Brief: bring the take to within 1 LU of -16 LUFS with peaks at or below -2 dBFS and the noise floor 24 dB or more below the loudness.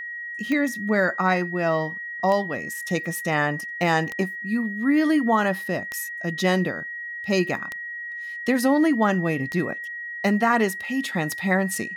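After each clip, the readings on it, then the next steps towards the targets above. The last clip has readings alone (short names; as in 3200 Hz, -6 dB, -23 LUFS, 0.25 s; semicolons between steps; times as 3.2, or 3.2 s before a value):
clicks 7; steady tone 1900 Hz; tone level -31 dBFS; loudness -24.0 LUFS; peak -8.0 dBFS; loudness target -16.0 LUFS
-> de-click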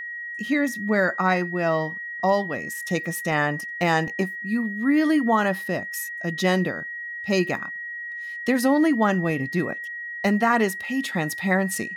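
clicks 0; steady tone 1900 Hz; tone level -31 dBFS
-> notch 1900 Hz, Q 30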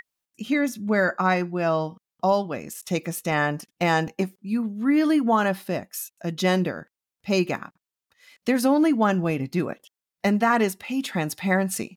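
steady tone none; loudness -24.0 LUFS; peak -8.5 dBFS; loudness target -16.0 LUFS
-> gain +8 dB; limiter -2 dBFS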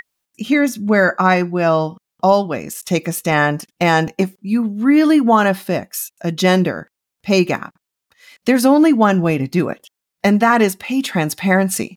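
loudness -16.5 LUFS; peak -2.0 dBFS; noise floor -82 dBFS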